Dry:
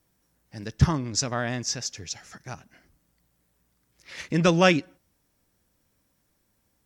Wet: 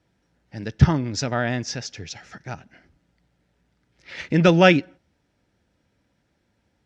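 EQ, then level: HPF 48 Hz; LPF 3800 Hz 12 dB/oct; notch 1100 Hz, Q 5.5; +5.0 dB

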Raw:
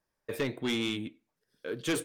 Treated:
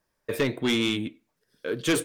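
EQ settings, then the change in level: notch 800 Hz, Q 18; +6.5 dB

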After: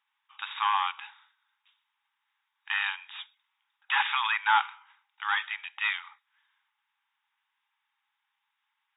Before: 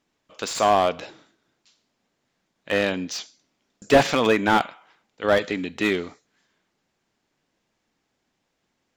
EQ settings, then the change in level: brick-wall FIR band-pass 790–3800 Hz; -1.5 dB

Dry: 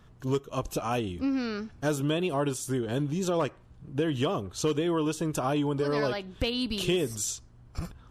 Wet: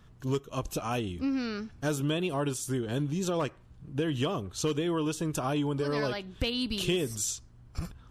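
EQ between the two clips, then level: bell 630 Hz -3.5 dB 2.3 oct; 0.0 dB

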